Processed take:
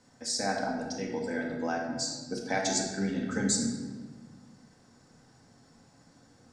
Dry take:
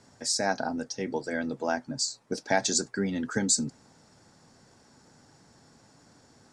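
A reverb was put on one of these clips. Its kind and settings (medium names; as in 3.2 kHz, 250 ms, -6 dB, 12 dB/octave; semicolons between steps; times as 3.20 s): simulated room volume 1300 m³, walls mixed, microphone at 2 m; trim -6 dB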